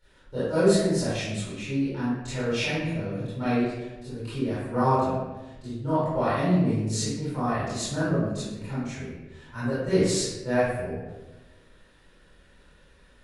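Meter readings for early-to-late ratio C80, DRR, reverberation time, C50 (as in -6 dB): 0.5 dB, -14.0 dB, 1.1 s, -3.5 dB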